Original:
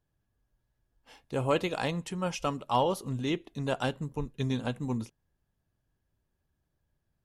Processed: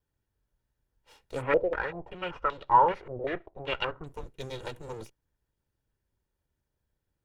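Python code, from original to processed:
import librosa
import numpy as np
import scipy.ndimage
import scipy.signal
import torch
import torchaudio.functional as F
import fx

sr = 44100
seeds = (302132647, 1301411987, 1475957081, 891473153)

y = fx.lower_of_two(x, sr, delay_ms=2.1)
y = fx.filter_held_lowpass(y, sr, hz=5.2, low_hz=570.0, high_hz=3700.0, at=(1.41, 4.05), fade=0.02)
y = y * librosa.db_to_amplitude(-1.5)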